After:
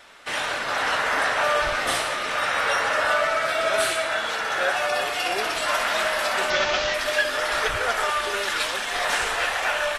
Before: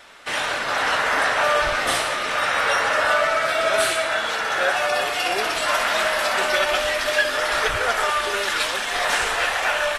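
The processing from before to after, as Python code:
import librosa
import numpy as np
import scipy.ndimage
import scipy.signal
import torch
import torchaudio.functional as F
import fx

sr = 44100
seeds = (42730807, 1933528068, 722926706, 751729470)

y = fx.delta_mod(x, sr, bps=32000, step_db=-18.0, at=(6.5, 6.94))
y = y * librosa.db_to_amplitude(-2.5)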